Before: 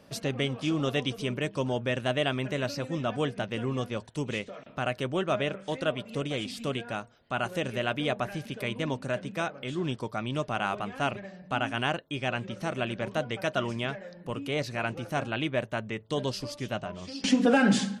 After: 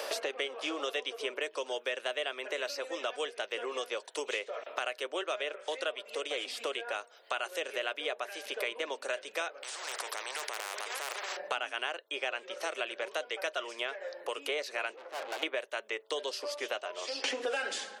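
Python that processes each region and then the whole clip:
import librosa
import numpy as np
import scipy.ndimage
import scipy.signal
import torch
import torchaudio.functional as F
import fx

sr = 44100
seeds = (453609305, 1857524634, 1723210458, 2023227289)

y = fx.chain(x, sr, fx.transient(attack_db=-3, sustain_db=9),
    fx.overload_stage(gain_db=22.0),
    fx.spectral_comp(ratio=10.0), at=(9.63, 11.37))
y = fx.chain(y, sr, fx.lowpass(hz=1800.0, slope=12),
    fx.tube_stage(drive_db=42.0, bias=0.65), at=(14.96, 15.43))
y = scipy.signal.sosfilt(scipy.signal.butter(6, 420.0, 'highpass', fs=sr, output='sos'), y)
y = fx.dynamic_eq(y, sr, hz=790.0, q=1.0, threshold_db=-40.0, ratio=4.0, max_db=-5)
y = fx.band_squash(y, sr, depth_pct=100)
y = F.gain(torch.from_numpy(y), -1.5).numpy()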